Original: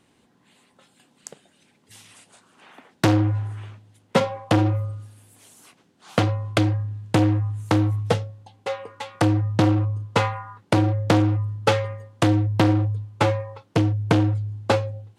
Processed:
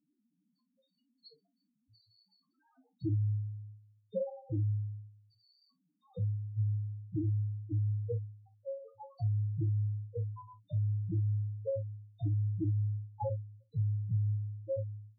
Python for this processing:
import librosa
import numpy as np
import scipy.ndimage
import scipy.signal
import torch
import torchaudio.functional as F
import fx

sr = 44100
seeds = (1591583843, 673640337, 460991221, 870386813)

p1 = fx.freq_compress(x, sr, knee_hz=3600.0, ratio=4.0)
p2 = fx.spec_topn(p1, sr, count=1)
p3 = p2 + fx.room_early_taps(p2, sr, ms=(27, 53), db=(-10.0, -15.5), dry=0)
p4 = fx.env_lowpass_down(p3, sr, base_hz=2400.0, full_db=-25.5)
y = p4 * librosa.db_to_amplitude(-5.5)